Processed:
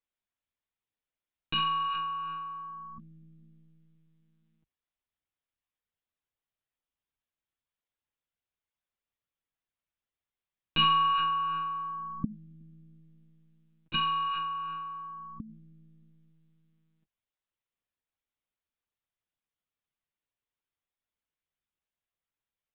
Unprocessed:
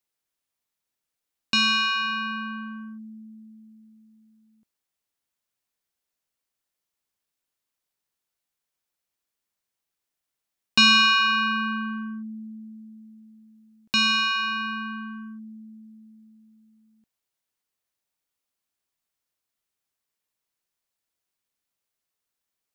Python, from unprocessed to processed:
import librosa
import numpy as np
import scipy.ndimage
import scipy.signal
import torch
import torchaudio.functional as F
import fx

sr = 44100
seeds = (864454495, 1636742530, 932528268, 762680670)

y = fx.peak_eq(x, sr, hz=76.0, db=14.5, octaves=0.58)
y = fx.lpc_monotone(y, sr, seeds[0], pitch_hz=160.0, order=16)
y = F.gain(torch.from_numpy(y), -6.5).numpy()